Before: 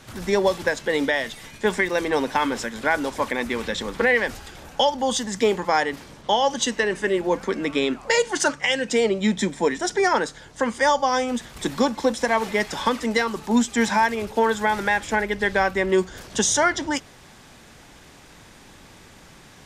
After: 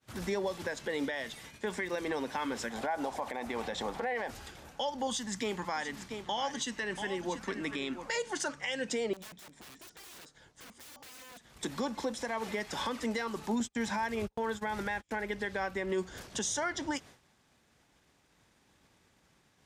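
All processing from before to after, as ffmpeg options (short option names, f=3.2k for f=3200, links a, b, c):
-filter_complex "[0:a]asettb=1/sr,asplit=3[a][b][c];[a]atrim=end=2.704[d];[b]atrim=start=2.7:end=4.31,asetpts=PTS-STARTPTS,afade=t=in:d=0.004:c=qsin,afade=t=out:st=1.606:d=0.004:c=qsin,equalizer=f=750:w=2.1:g=15,acompressor=threshold=-17dB:ratio=3:attack=3.2:release=140:knee=1:detection=peak[e];[c]atrim=start=4.306[f];[d][e]acrossfade=d=0.004:c1=hsin:c2=qsin[g];[g][f]acrossfade=d=0.004:c1=qsin:c2=hsin,asettb=1/sr,asplit=3[h][i][j];[h]atrim=end=5.074[k];[i]atrim=start=5.07:end=8.16,asetpts=PTS-STARTPTS,afade=t=in:d=0.004:c=qsin,afade=t=out:st=3.086:d=0.004:c=qsin,equalizer=f=480:w=1.4:g=-7.5,aecho=1:1:685:0.251,atrim=end_sample=136269[l];[j]atrim=start=8.156[m];[k][l]acrossfade=d=0.004:c1=hsin:c2=qsin[n];[n][m]acrossfade=d=0.004:c1=qsin:c2=hsin,asettb=1/sr,asplit=3[o][p][q];[o]atrim=end=9.134[r];[p]atrim=start=9.13:end=11.63,asetpts=PTS-STARTPTS,afade=t=in:d=0.004:c=qsin,afade=t=out:st=2.496:d=0.004:c=qsin,aeval=exprs='(mod(13.3*val(0)+1,2)-1)/13.3':c=same,acompressor=threshold=-39dB:ratio=12:attack=3.2:release=140:knee=1:detection=peak[s];[q]atrim=start=11.626[t];[r][s]acrossfade=d=0.004:c1=hsin:c2=qsin[u];[u][t]acrossfade=d=0.004:c1=qsin:c2=hsin,asettb=1/sr,asplit=3[v][w][x];[v]atrim=end=13.604[y];[w]atrim=start=13.6:end=15.11,asetpts=PTS-STARTPTS,afade=t=in:d=0.004:c=qsin,afade=t=out:st=1.506:d=0.004:c=qsin,agate=range=-39dB:threshold=-30dB:ratio=16:release=100:detection=peak,lowshelf=f=120:g=9[z];[x]atrim=start=15.106[aa];[y][z]acrossfade=d=0.004:c1=hsin:c2=qsin[ab];[ab][aa]acrossfade=d=0.004:c1=qsin:c2=hsin,agate=range=-33dB:threshold=-37dB:ratio=3:detection=peak,highpass=41,alimiter=limit=-19dB:level=0:latency=1:release=202,volume=-5.5dB"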